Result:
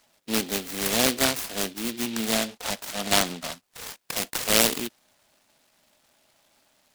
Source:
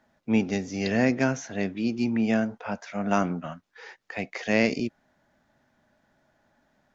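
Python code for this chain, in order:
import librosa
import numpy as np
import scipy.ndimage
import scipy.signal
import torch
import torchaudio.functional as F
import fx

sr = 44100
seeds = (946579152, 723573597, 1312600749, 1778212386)

y = fx.highpass(x, sr, hz=1200.0, slope=6)
y = fx.noise_mod_delay(y, sr, seeds[0], noise_hz=3000.0, depth_ms=0.2)
y = y * 10.0 ** (8.5 / 20.0)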